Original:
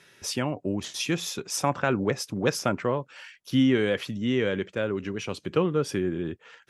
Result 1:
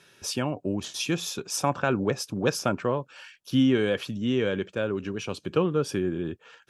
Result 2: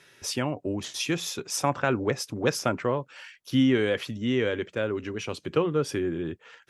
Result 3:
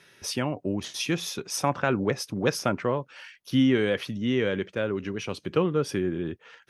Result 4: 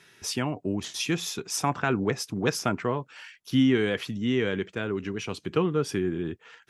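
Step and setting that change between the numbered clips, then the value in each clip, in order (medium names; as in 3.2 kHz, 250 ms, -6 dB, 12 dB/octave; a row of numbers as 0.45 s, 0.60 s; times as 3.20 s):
band-stop, frequency: 2 kHz, 190 Hz, 7.4 kHz, 550 Hz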